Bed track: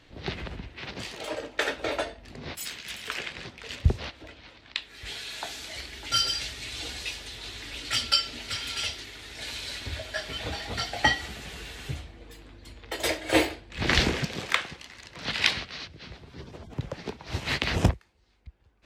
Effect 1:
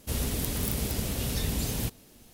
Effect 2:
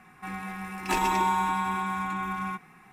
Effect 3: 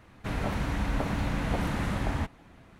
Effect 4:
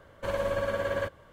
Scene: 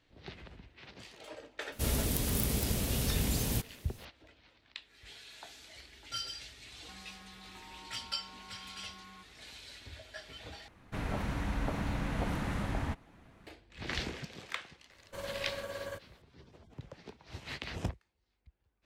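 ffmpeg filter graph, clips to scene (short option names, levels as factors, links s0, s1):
-filter_complex "[0:a]volume=0.2[s0];[2:a]acompressor=threshold=0.0112:ratio=6:attack=3.2:release=140:knee=1:detection=peak[s1];[4:a]bass=f=250:g=-1,treble=f=4000:g=12[s2];[s0]asplit=2[s3][s4];[s3]atrim=end=10.684[s5];[3:a]atrim=end=2.79,asetpts=PTS-STARTPTS,volume=0.562[s6];[s4]atrim=start=13.466[s7];[1:a]atrim=end=2.33,asetpts=PTS-STARTPTS,volume=0.841,afade=t=in:d=0.004:c=hsin,afade=t=out:st=2.326:d=0.004:c=hsin,adelay=1720[s8];[s1]atrim=end=2.92,asetpts=PTS-STARTPTS,volume=0.251,afade=t=in:d=0.004:c=hsin,afade=t=out:st=2.916:d=0.004:c=hsin,adelay=293706S[s9];[s2]atrim=end=1.32,asetpts=PTS-STARTPTS,volume=0.266,afade=t=in:d=0.004:c=hsin,afade=t=out:st=1.316:d=0.004:c=hsin,adelay=14900[s10];[s5][s6]acrossfade=d=0.004:c1=hsin:c2=hsin[s11];[s11][s7]acrossfade=d=0.004:c1=hsin:c2=hsin[s12];[s12][s8][s9][s10]amix=inputs=4:normalize=0"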